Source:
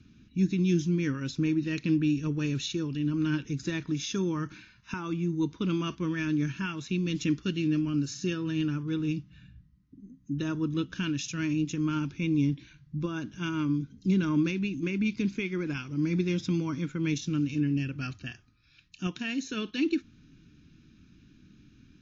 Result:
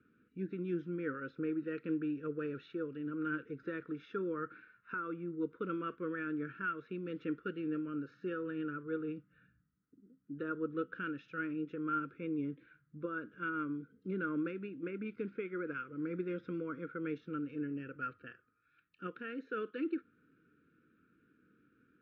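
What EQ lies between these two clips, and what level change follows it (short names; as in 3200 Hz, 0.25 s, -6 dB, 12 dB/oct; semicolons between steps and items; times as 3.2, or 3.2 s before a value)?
double band-pass 820 Hz, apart 1.5 oct; air absorption 360 m; +7.0 dB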